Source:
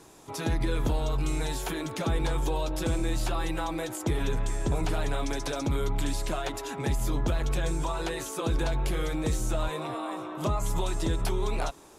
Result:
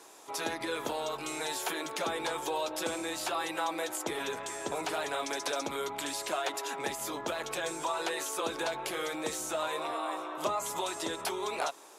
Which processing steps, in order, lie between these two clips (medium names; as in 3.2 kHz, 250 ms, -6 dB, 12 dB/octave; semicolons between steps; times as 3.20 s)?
high-pass 490 Hz 12 dB/octave; trim +1.5 dB